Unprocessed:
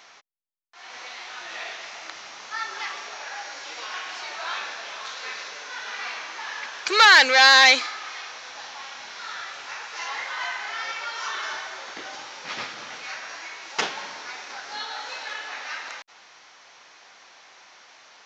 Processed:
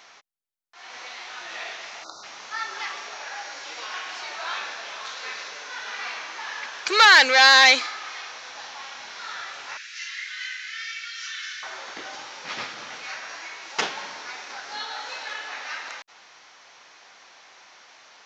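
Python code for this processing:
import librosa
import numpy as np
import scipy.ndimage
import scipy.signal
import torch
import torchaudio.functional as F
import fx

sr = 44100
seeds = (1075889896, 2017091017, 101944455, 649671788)

y = fx.spec_erase(x, sr, start_s=2.04, length_s=0.2, low_hz=1500.0, high_hz=3600.0)
y = fx.cheby2_bandstop(y, sr, low_hz=120.0, high_hz=940.0, order=4, stop_db=40, at=(9.77, 11.63))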